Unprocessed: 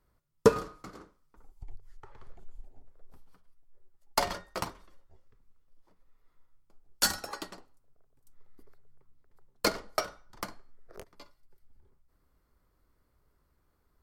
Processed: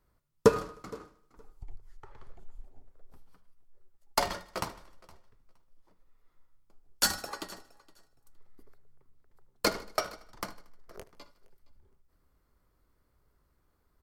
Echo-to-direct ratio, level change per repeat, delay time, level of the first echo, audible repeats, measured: −17.0 dB, repeats not evenly spaced, 77 ms, −20.0 dB, 4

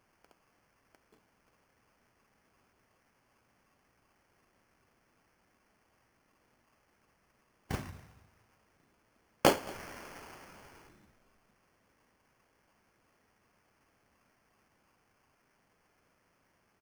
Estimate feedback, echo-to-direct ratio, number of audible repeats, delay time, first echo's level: 26%, −22.5 dB, 2, 224 ms, −23.0 dB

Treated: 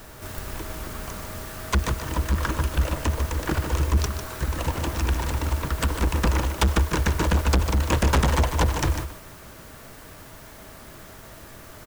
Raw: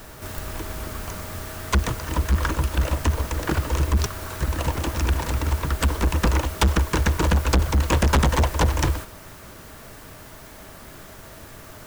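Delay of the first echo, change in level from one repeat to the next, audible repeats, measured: 149 ms, repeats not evenly spaced, 1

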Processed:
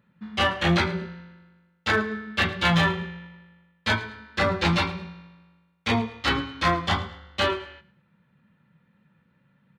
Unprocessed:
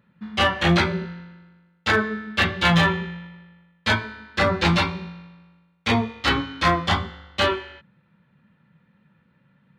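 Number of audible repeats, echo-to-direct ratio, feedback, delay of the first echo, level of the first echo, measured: 2, −18.0 dB, 29%, 108 ms, −18.5 dB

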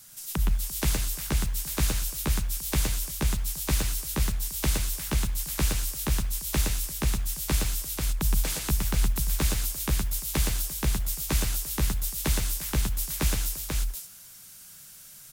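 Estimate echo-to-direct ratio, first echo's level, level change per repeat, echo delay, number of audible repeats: 0.0 dB, −4.0 dB, repeats not evenly spaced, 117 ms, 3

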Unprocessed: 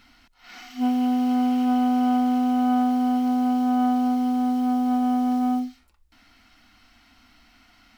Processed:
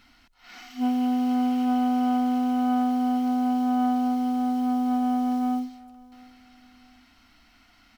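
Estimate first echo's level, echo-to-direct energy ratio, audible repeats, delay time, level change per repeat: −22.0 dB, −21.5 dB, 2, 703 ms, −9.5 dB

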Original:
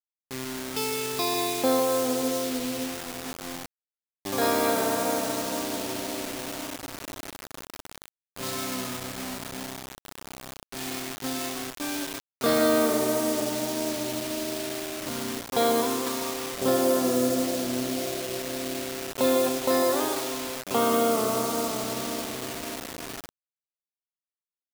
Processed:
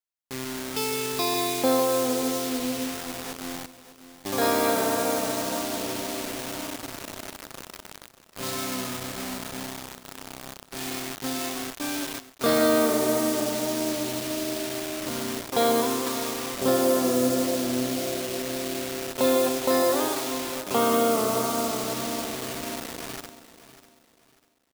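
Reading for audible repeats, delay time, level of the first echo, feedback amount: 2, 595 ms, −15.0 dB, 31%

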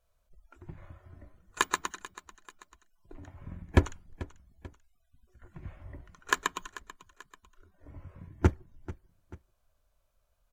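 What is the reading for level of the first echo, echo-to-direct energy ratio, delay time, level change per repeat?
−17.5 dB, −16.5 dB, 439 ms, −6.5 dB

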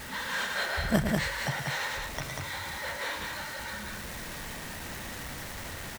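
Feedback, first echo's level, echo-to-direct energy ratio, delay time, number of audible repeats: repeats not evenly spaced, −7.5 dB, −2.0 dB, 113 ms, 2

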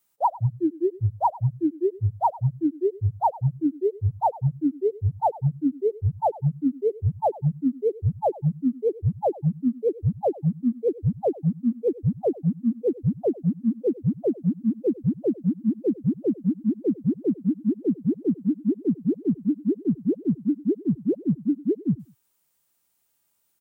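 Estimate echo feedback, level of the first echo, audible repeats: 22%, −19.5 dB, 2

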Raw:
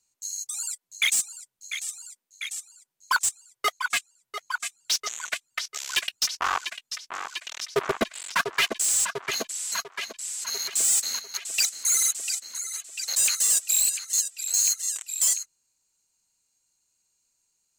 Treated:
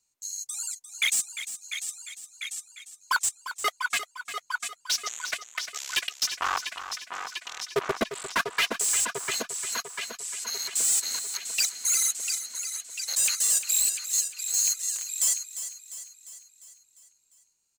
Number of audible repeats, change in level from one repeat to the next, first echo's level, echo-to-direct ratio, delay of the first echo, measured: 5, −5.0 dB, −11.5 dB, −10.0 dB, 350 ms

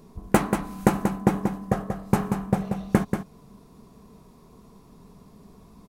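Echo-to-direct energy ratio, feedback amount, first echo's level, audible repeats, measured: −7.0 dB, repeats not evenly spaced, −7.0 dB, 1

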